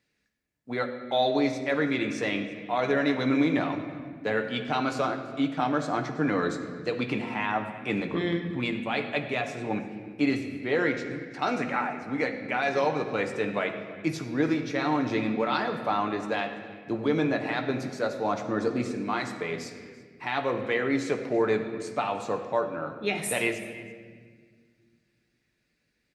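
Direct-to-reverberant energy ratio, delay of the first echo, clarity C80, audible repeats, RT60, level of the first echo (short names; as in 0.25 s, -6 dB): 4.0 dB, 0.334 s, 9.0 dB, 1, 1.7 s, -21.5 dB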